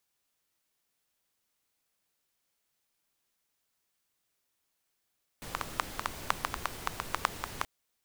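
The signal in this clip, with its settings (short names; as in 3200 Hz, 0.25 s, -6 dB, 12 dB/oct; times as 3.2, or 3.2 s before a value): rain from filtered ticks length 2.23 s, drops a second 6.7, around 1100 Hz, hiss -4.5 dB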